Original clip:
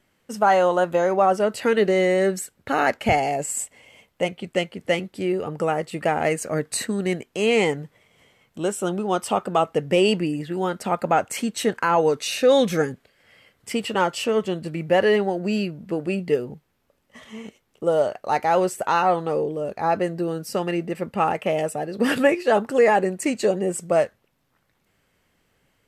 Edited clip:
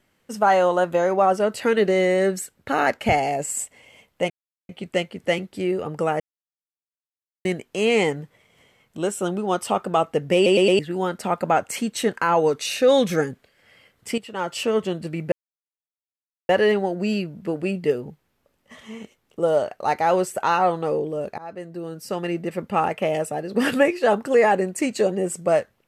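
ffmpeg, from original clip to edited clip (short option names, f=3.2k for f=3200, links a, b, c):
-filter_complex "[0:a]asplit=11[a][b][c][d][e][f][g][h][i][j][k];[a]atrim=end=4.3,asetpts=PTS-STARTPTS,afade=t=out:st=4.296:d=0.004:c=hsin,apad=pad_dur=0.39[l];[b]atrim=start=4.3:end=5.81,asetpts=PTS-STARTPTS,afade=t=in:d=0.004:c=hsin,afade=t=out:st=1.506:d=0.004:c=hsin[m];[c]atrim=start=5.81:end=7.06,asetpts=PTS-STARTPTS,volume=0[n];[d]atrim=start=7.06:end=10.072,asetpts=PTS-STARTPTS,afade=t=in:d=0.004:c=hsin[o];[e]atrim=start=9.958:end=10.072[p];[f]atrim=start=9.958:end=10.072[q];[g]atrim=start=9.958:end=10.072[r];[h]atrim=start=10.398:end=13.79,asetpts=PTS-STARTPTS,afade=t=out:st=3.388:d=0.004:c=hsin:silence=0.237137[s];[i]atrim=start=13.79:end=14.93,asetpts=PTS-STARTPTS,afade=t=in:d=0.41:c=qua:silence=0.237137,afade=t=out:st=1.136:d=0.004:c=hsin,apad=pad_dur=1.17[t];[j]atrim=start=14.93:end=19.82,asetpts=PTS-STARTPTS,afade=t=in:d=0.004:c=hsin,afade=t=out:st=4.886:d=0.004:c=hsin:silence=0.0891251[u];[k]atrim=start=19.82,asetpts=PTS-STARTPTS,afade=t=in:d=1.08:silence=0.0891251[v];[l][m][n][o]concat=n=4:v=0:a=1[w];[w][p]acrossfade=d=0.004:c1=hsin:c2=hsin[x];[x][q]acrossfade=d=0.004:c1=hsin:c2=hsin[y];[y][r]acrossfade=d=0.004:c1=hsin:c2=hsin[z];[s][t][u][v]concat=n=4:v=0:a=1[aa];[z][aa]acrossfade=d=0.004:c1=hsin:c2=hsin"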